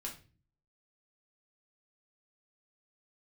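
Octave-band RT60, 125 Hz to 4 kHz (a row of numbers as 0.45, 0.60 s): 0.65, 0.70, 0.45, 0.30, 0.35, 0.35 s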